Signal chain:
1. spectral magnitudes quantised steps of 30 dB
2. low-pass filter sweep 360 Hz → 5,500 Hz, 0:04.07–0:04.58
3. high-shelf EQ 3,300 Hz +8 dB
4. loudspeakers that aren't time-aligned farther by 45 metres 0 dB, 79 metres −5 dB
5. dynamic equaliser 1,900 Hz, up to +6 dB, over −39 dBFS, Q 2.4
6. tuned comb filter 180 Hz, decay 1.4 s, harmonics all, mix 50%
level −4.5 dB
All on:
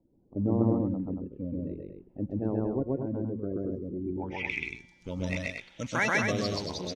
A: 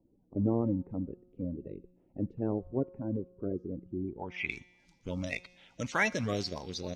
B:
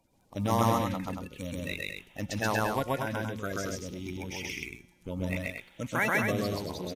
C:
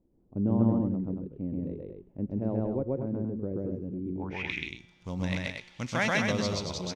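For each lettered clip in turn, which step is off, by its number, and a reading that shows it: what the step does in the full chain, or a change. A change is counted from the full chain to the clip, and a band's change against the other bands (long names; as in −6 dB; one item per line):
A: 4, change in integrated loudness −3.5 LU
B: 2, 1 kHz band +6.5 dB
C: 1, 4 kHz band +2.5 dB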